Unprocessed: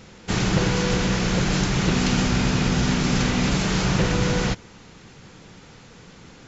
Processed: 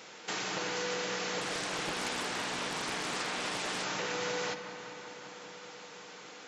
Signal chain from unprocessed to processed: HPF 500 Hz 12 dB/oct; compressor 2.5:1, threshold -38 dBFS, peak gain reduction 10 dB; darkening echo 0.193 s, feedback 82%, low-pass 4400 Hz, level -13 dB; reverb RT60 1.9 s, pre-delay 6 ms, DRR 8.5 dB; 1.41–3.84 Doppler distortion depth 0.67 ms

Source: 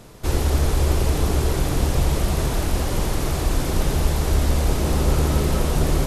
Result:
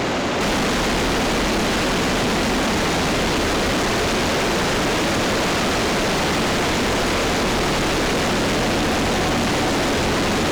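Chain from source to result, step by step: overdrive pedal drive 43 dB, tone 3300 Hz, clips at -6 dBFS; low shelf 220 Hz -8 dB; speed mistake 78 rpm record played at 45 rpm; high shelf 6100 Hz -6 dB; overloaded stage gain 18.5 dB

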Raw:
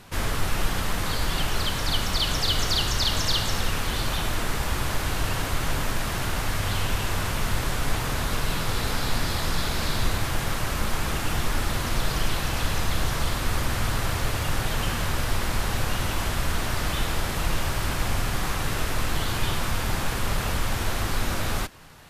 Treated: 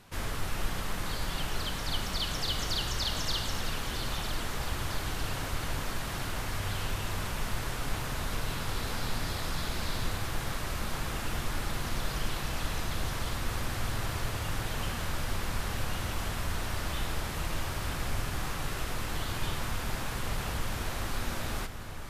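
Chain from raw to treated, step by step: echo with dull and thin repeats by turns 0.477 s, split 2200 Hz, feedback 81%, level -10 dB; gain -8 dB

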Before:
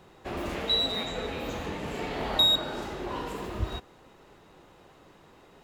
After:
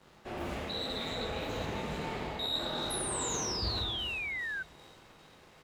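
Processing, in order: flange 1.1 Hz, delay 3.3 ms, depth 8.7 ms, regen -50%; on a send: narrowing echo 0.399 s, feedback 71%, band-pass 2400 Hz, level -17 dB; on the sum: crossover distortion -58.5 dBFS; doubler 27 ms -11 dB; reverse; compressor 6:1, threshold -44 dBFS, peak gain reduction 21 dB; reverse; plate-style reverb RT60 2 s, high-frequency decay 0.8×, DRR -2 dB; painted sound fall, 2.9–4.63, 1500–11000 Hz -43 dBFS; Doppler distortion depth 0.18 ms; gain +6.5 dB

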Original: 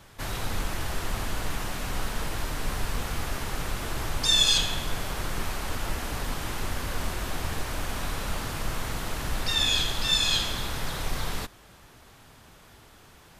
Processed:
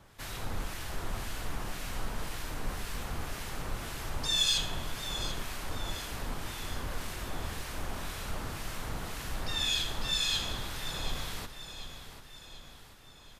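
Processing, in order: in parallel at -4 dB: soft clip -18 dBFS, distortion -18 dB; on the sum: harmonic tremolo 1.9 Hz, depth 50%, crossover 1500 Hz; feedback echo 0.738 s, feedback 51%, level -11 dB; gain -8.5 dB

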